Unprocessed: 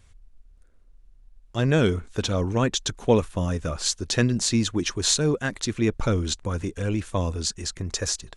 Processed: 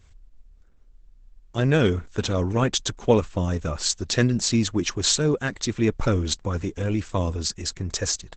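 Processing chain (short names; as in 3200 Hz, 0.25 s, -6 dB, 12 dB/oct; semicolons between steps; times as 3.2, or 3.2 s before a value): gain +1.5 dB; Opus 12 kbps 48000 Hz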